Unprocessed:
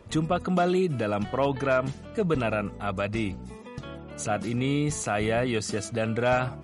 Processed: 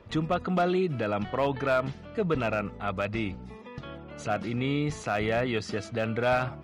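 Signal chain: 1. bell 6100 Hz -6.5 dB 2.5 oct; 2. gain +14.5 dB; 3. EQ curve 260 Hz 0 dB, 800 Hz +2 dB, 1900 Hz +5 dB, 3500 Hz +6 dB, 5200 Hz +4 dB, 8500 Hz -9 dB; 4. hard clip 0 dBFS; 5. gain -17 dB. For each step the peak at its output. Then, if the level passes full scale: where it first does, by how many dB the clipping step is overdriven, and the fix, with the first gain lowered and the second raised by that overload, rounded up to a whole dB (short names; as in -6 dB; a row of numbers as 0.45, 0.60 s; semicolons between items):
-12.5, +2.0, +4.5, 0.0, -17.0 dBFS; step 2, 4.5 dB; step 2 +9.5 dB, step 5 -12 dB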